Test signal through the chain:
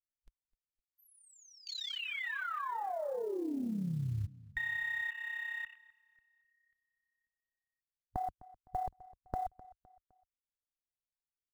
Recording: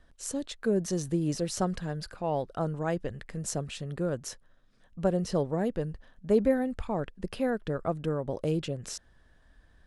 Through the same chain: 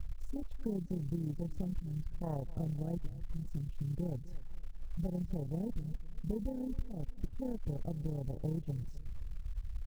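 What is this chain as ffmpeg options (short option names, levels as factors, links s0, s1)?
-filter_complex "[0:a]aemphasis=mode=reproduction:type=bsi,tremolo=f=33:d=0.621,lowshelf=f=230:g=11,acompressor=threshold=0.0178:ratio=8,afwtdn=0.00891,acrusher=bits=8:mode=log:mix=0:aa=0.000001,asplit=2[s0][s1];[s1]adelay=256,lowpass=f=5000:p=1,volume=0.106,asplit=2[s2][s3];[s3]adelay=256,lowpass=f=5000:p=1,volume=0.4,asplit=2[s4][s5];[s5]adelay=256,lowpass=f=5000:p=1,volume=0.4[s6];[s0][s2][s4][s6]amix=inputs=4:normalize=0,volume=1.12"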